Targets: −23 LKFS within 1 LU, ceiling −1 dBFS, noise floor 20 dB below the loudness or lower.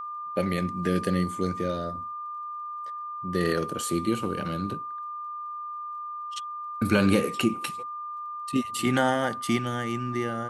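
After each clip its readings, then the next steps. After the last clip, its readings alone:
crackle rate 19 per second; interfering tone 1,200 Hz; level of the tone −33 dBFS; integrated loudness −28.5 LKFS; sample peak −8.0 dBFS; target loudness −23.0 LKFS
→ click removal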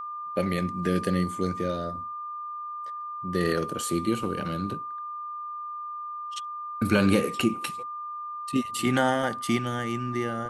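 crackle rate 0 per second; interfering tone 1,200 Hz; level of the tone −33 dBFS
→ notch filter 1,200 Hz, Q 30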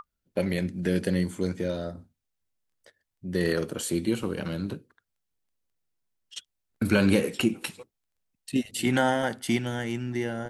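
interfering tone none found; integrated loudness −28.0 LKFS; sample peak −8.5 dBFS; target loudness −23.0 LKFS
→ level +5 dB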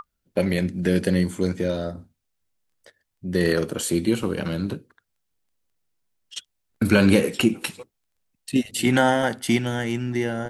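integrated loudness −23.0 LKFS; sample peak −3.5 dBFS; background noise floor −77 dBFS

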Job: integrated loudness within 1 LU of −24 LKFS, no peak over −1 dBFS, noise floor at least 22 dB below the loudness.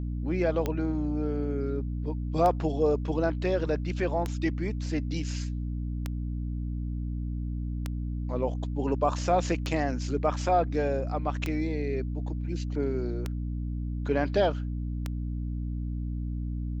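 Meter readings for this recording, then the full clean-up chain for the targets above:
number of clicks 9; mains hum 60 Hz; hum harmonics up to 300 Hz; level of the hum −29 dBFS; integrated loudness −30.0 LKFS; sample peak −12.0 dBFS; target loudness −24.0 LKFS
→ click removal
mains-hum notches 60/120/180/240/300 Hz
level +6 dB

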